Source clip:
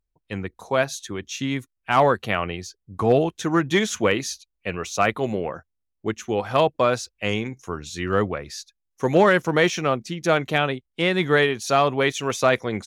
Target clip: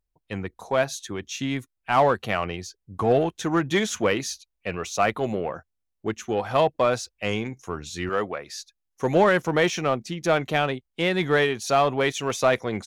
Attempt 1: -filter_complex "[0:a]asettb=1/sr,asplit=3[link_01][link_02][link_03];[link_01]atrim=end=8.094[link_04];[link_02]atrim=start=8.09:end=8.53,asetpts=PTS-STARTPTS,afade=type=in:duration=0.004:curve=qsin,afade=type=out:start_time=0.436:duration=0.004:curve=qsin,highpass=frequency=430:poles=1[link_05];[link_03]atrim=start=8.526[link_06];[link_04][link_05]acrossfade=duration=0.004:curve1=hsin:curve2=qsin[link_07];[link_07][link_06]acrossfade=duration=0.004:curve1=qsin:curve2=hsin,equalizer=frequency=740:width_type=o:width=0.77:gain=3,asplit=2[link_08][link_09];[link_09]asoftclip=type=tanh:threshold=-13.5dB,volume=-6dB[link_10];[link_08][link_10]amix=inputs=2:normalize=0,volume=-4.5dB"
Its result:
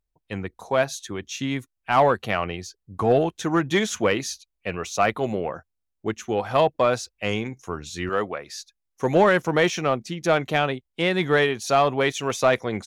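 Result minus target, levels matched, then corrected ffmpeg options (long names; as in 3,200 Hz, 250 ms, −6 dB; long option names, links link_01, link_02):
soft clipping: distortion −7 dB
-filter_complex "[0:a]asettb=1/sr,asplit=3[link_01][link_02][link_03];[link_01]atrim=end=8.094[link_04];[link_02]atrim=start=8.09:end=8.53,asetpts=PTS-STARTPTS,afade=type=in:duration=0.004:curve=qsin,afade=type=out:start_time=0.436:duration=0.004:curve=qsin,highpass=frequency=430:poles=1[link_05];[link_03]atrim=start=8.526[link_06];[link_04][link_05]acrossfade=duration=0.004:curve1=hsin:curve2=qsin[link_07];[link_07][link_06]acrossfade=duration=0.004:curve1=qsin:curve2=hsin,equalizer=frequency=740:width_type=o:width=0.77:gain=3,asplit=2[link_08][link_09];[link_09]asoftclip=type=tanh:threshold=-22dB,volume=-6dB[link_10];[link_08][link_10]amix=inputs=2:normalize=0,volume=-4.5dB"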